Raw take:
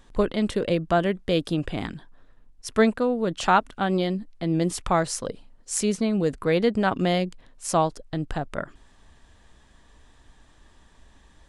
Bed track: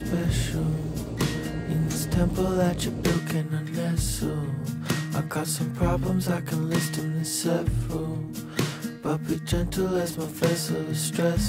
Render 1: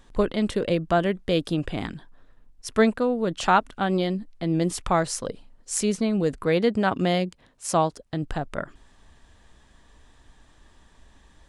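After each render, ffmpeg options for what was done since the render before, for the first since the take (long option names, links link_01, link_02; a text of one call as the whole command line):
ffmpeg -i in.wav -filter_complex "[0:a]asettb=1/sr,asplit=3[link_01][link_02][link_03];[link_01]atrim=end=6.464[link_04];[link_02]atrim=start=6.46:end=8.23,asetpts=PTS-STARTPTS,afade=type=in:duration=0.004:curve=qsin,afade=type=out:start_time=1.766:duration=0.004:curve=qsin,highpass=49[link_05];[link_03]atrim=start=8.226[link_06];[link_04][link_05]acrossfade=duration=0.004:curve1=hsin:curve2=qsin[link_07];[link_07][link_06]acrossfade=duration=0.004:curve1=qsin:curve2=hsin" out.wav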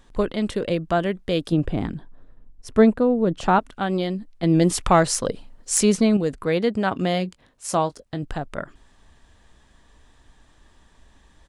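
ffmpeg -i in.wav -filter_complex "[0:a]asettb=1/sr,asplit=3[link_01][link_02][link_03];[link_01]atrim=end=1.524[link_04];[link_02]atrim=start=1.52:end=3.59,asetpts=PTS-STARTPTS,afade=type=in:duration=0.004:curve=qsin,afade=type=out:start_time=2.066:duration=0.004:curve=qsin,tiltshelf=frequency=970:gain=6.5[link_05];[link_03]atrim=start=3.586[link_06];[link_04][link_05]acrossfade=duration=0.004:curve1=hsin:curve2=qsin[link_07];[link_07][link_06]acrossfade=duration=0.004:curve1=qsin:curve2=hsin,asettb=1/sr,asplit=3[link_08][link_09][link_10];[link_08]atrim=end=4.434[link_11];[link_09]atrim=start=4.43:end=6.17,asetpts=PTS-STARTPTS,afade=type=in:duration=0.004:curve=qsin,afade=type=out:start_time=1.736:duration=0.004:curve=qsin,acontrast=65[link_12];[link_10]atrim=start=6.166[link_13];[link_11][link_12]acrossfade=duration=0.004:curve1=hsin:curve2=qsin[link_14];[link_14][link_13]acrossfade=duration=0.004:curve1=qsin:curve2=hsin,asplit=3[link_15][link_16][link_17];[link_15]afade=type=out:start_time=6.94:duration=0.02[link_18];[link_16]asplit=2[link_19][link_20];[link_20]adelay=21,volume=-14dB[link_21];[link_19][link_21]amix=inputs=2:normalize=0,afade=type=in:start_time=6.94:duration=0.02,afade=type=out:start_time=8.23:duration=0.02[link_22];[link_17]afade=type=in:start_time=8.23:duration=0.02[link_23];[link_18][link_22][link_23]amix=inputs=3:normalize=0" out.wav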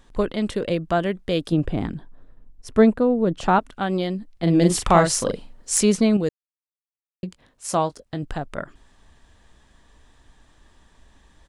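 ffmpeg -i in.wav -filter_complex "[0:a]asettb=1/sr,asplit=3[link_01][link_02][link_03];[link_01]atrim=end=4.334[link_04];[link_02]atrim=start=4.33:end=5.77,asetpts=PTS-STARTPTS,afade=type=in:duration=0.004:curve=qsin,afade=type=out:start_time=1.436:duration=0.004:curve=qsin,asplit=2[link_05][link_06];[link_06]adelay=41,volume=-5dB[link_07];[link_05][link_07]amix=inputs=2:normalize=0,atrim=end_sample=63504[link_08];[link_03]atrim=start=5.766[link_09];[link_04][link_08]acrossfade=duration=0.004:curve1=hsin:curve2=qsin[link_10];[link_10][link_09]acrossfade=duration=0.004:curve1=qsin:curve2=hsin,asplit=3[link_11][link_12][link_13];[link_11]atrim=end=6.29,asetpts=PTS-STARTPTS,afade=type=out:start_time=6.286:duration=0.004:curve=hsin[link_14];[link_12]atrim=start=6.29:end=7.23,asetpts=PTS-STARTPTS,volume=0[link_15];[link_13]atrim=start=7.23,asetpts=PTS-STARTPTS,afade=type=in:duration=0.004:curve=hsin[link_16];[link_14][link_15][link_16]concat=n=3:v=0:a=1" out.wav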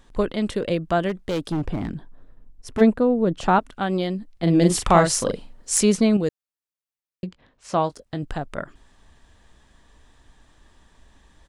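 ffmpeg -i in.wav -filter_complex "[0:a]asplit=3[link_01][link_02][link_03];[link_01]afade=type=out:start_time=1.08:duration=0.02[link_04];[link_02]asoftclip=type=hard:threshold=-20.5dB,afade=type=in:start_time=1.08:duration=0.02,afade=type=out:start_time=2.8:duration=0.02[link_05];[link_03]afade=type=in:start_time=2.8:duration=0.02[link_06];[link_04][link_05][link_06]amix=inputs=3:normalize=0,asettb=1/sr,asplit=3[link_07][link_08][link_09];[link_07]atrim=end=7.264[link_10];[link_08]atrim=start=7.26:end=7.84,asetpts=PTS-STARTPTS,afade=type=in:duration=0.004:curve=qsin,afade=type=out:start_time=0.576:duration=0.004:curve=qsin,lowpass=3900[link_11];[link_09]atrim=start=7.836[link_12];[link_10][link_11]acrossfade=duration=0.004:curve1=hsin:curve2=qsin[link_13];[link_13][link_12]acrossfade=duration=0.004:curve1=qsin:curve2=hsin" out.wav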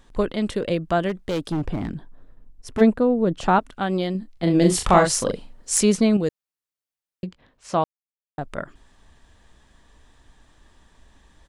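ffmpeg -i in.wav -filter_complex "[0:a]asettb=1/sr,asplit=3[link_01][link_02][link_03];[link_01]atrim=end=4.124[link_04];[link_02]atrim=start=4.12:end=5.06,asetpts=PTS-STARTPTS,afade=type=in:duration=0.004:curve=qsin,afade=type=out:start_time=0.936:duration=0.004:curve=qsin,asplit=2[link_05][link_06];[link_06]adelay=27,volume=-8dB[link_07];[link_05][link_07]amix=inputs=2:normalize=0,atrim=end_sample=41454[link_08];[link_03]atrim=start=5.056[link_09];[link_04][link_08]acrossfade=duration=0.004:curve1=hsin:curve2=qsin[link_10];[link_10][link_09]acrossfade=duration=0.004:curve1=qsin:curve2=hsin,asplit=3[link_11][link_12][link_13];[link_11]atrim=end=7.84,asetpts=PTS-STARTPTS,afade=type=out:start_time=7.836:duration=0.004:curve=hsin[link_14];[link_12]atrim=start=7.84:end=8.38,asetpts=PTS-STARTPTS,volume=0[link_15];[link_13]atrim=start=8.38,asetpts=PTS-STARTPTS,afade=type=in:duration=0.004:curve=hsin[link_16];[link_14][link_15][link_16]concat=n=3:v=0:a=1" out.wav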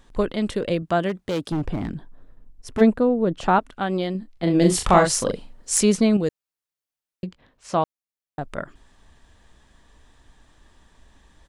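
ffmpeg -i in.wav -filter_complex "[0:a]asettb=1/sr,asplit=3[link_01][link_02][link_03];[link_01]atrim=end=0.824[link_04];[link_02]atrim=start=0.82:end=1.52,asetpts=PTS-STARTPTS,afade=type=in:duration=0.004:curve=qsin,afade=type=out:start_time=0.696:duration=0.004:curve=qsin,highpass=75[link_05];[link_03]atrim=start=1.516[link_06];[link_04][link_05]acrossfade=duration=0.004:curve1=hsin:curve2=qsin[link_07];[link_07][link_06]acrossfade=duration=0.004:curve1=qsin:curve2=hsin,asettb=1/sr,asplit=3[link_08][link_09][link_10];[link_08]atrim=end=3.094[link_11];[link_09]atrim=start=3.09:end=4.6,asetpts=PTS-STARTPTS,afade=type=in:duration=0.004:curve=qsin,afade=type=out:start_time=1.506:duration=0.004:curve=qsin,bass=frequency=250:gain=-2,treble=frequency=4000:gain=-3[link_12];[link_10]atrim=start=4.596[link_13];[link_11][link_12]acrossfade=duration=0.004:curve1=hsin:curve2=qsin[link_14];[link_14][link_13]acrossfade=duration=0.004:curve1=qsin:curve2=hsin" out.wav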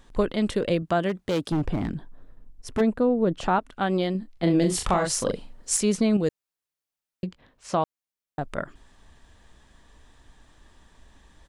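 ffmpeg -i in.wav -af "alimiter=limit=-12.5dB:level=0:latency=1:release=272" out.wav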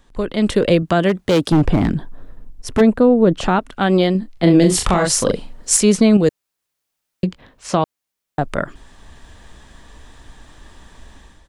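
ffmpeg -i in.wav -filter_complex "[0:a]acrossover=split=460|1500[link_01][link_02][link_03];[link_02]alimiter=limit=-22.5dB:level=0:latency=1[link_04];[link_01][link_04][link_03]amix=inputs=3:normalize=0,dynaudnorm=framelen=150:gausssize=5:maxgain=12dB" out.wav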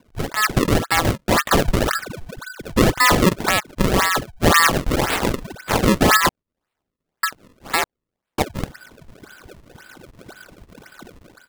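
ffmpeg -i in.wav -af "aeval=exprs='val(0)*sin(2*PI*1500*n/s)':channel_layout=same,acrusher=samples=33:mix=1:aa=0.000001:lfo=1:lforange=52.8:lforate=1.9" out.wav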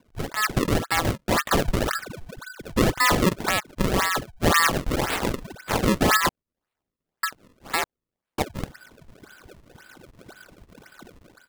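ffmpeg -i in.wav -af "volume=-5dB" out.wav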